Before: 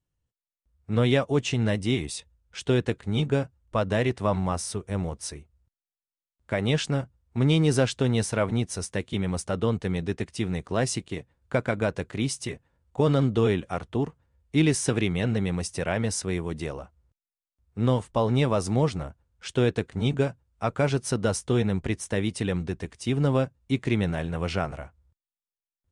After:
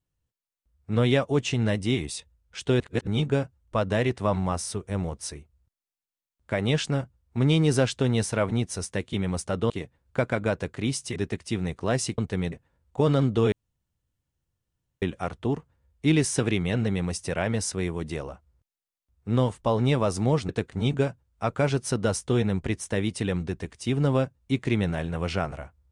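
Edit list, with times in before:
2.8–3.07 reverse
9.7–10.04 swap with 11.06–12.52
13.52 insert room tone 1.50 s
18.99–19.69 cut

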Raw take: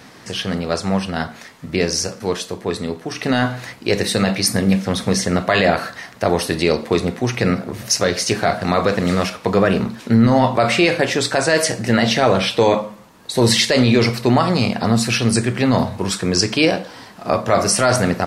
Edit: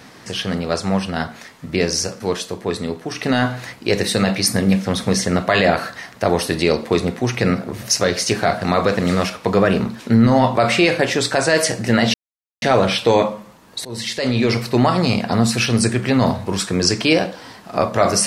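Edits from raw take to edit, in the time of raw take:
12.14 insert silence 0.48 s
13.37–14.62 fade in equal-power, from -23 dB

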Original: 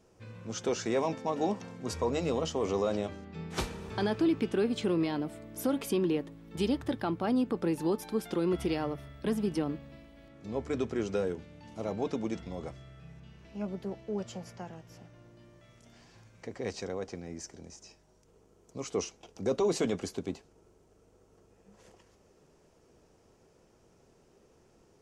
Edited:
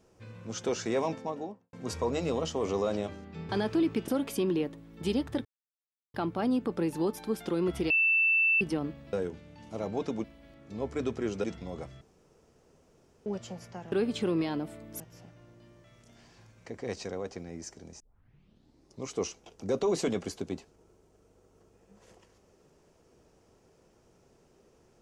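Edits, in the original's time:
1.06–1.73 studio fade out
3.49–3.95 cut
4.54–5.62 move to 14.77
6.99 insert silence 0.69 s
8.75–9.46 bleep 2660 Hz -21.5 dBFS
11.18–12.29 move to 9.98
12.86–14.11 room tone
17.77 tape start 1.07 s

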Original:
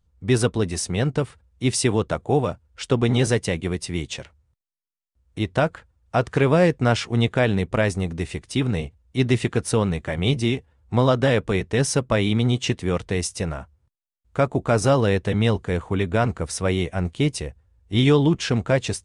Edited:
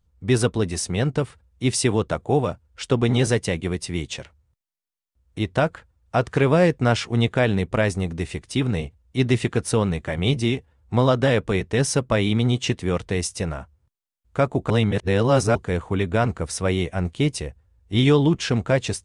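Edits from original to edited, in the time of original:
14.7–15.55 reverse

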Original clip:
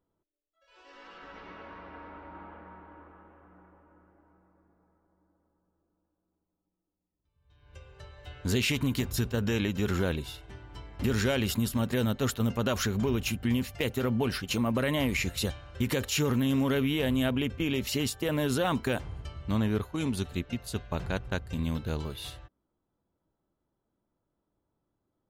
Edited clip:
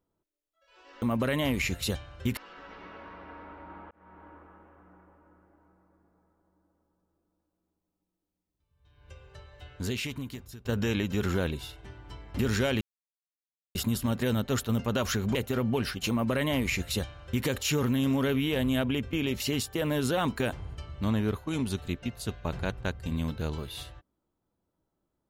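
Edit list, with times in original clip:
2.56–2.88 fade in
7.9–9.3 fade out, to -22 dB
11.46 insert silence 0.94 s
13.06–13.82 cut
14.57–15.92 copy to 1.02

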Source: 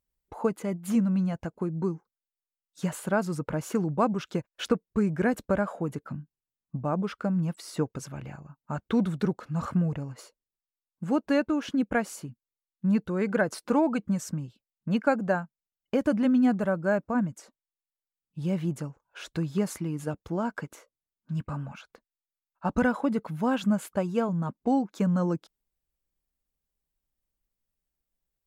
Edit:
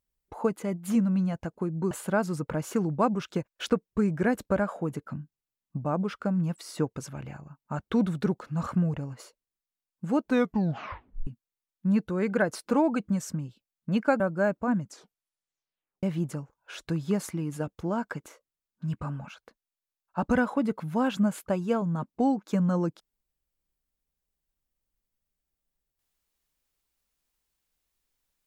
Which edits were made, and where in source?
1.91–2.9 cut
11.23 tape stop 1.03 s
15.19–16.67 cut
17.26 tape stop 1.24 s

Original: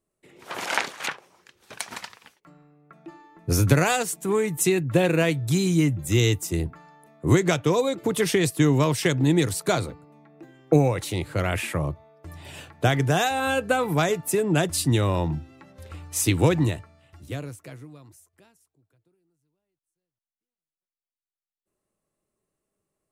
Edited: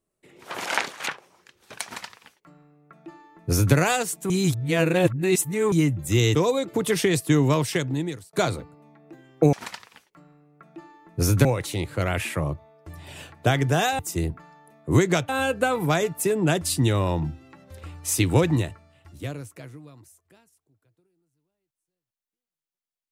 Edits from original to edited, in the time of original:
1.83–3.75 copy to 10.83
4.3–5.72 reverse
6.35–7.65 move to 13.37
8.87–9.63 fade out

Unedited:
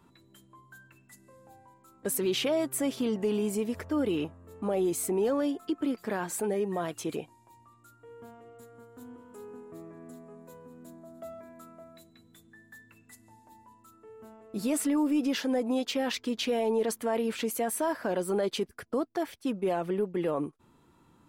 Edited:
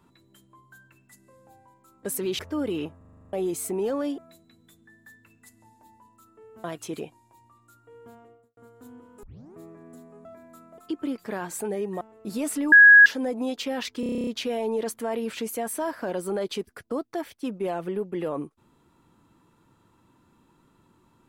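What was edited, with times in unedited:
2.39–3.78 cut
4.36 stutter in place 0.04 s, 9 plays
5.57–6.8 swap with 11.84–14.3
8.35–8.73 studio fade out
9.39 tape start 0.32 s
10.41–11.31 cut
15.01–15.35 bleep 1660 Hz -8 dBFS
16.29 stutter 0.03 s, 10 plays

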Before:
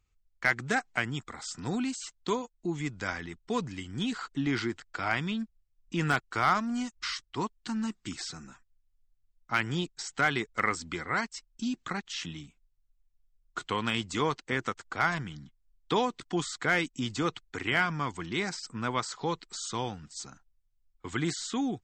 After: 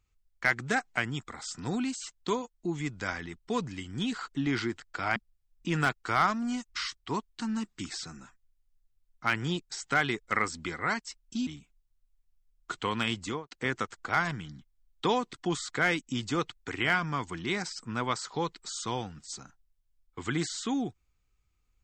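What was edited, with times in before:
5.16–5.43 cut
11.74–12.34 cut
14.07–14.38 studio fade out

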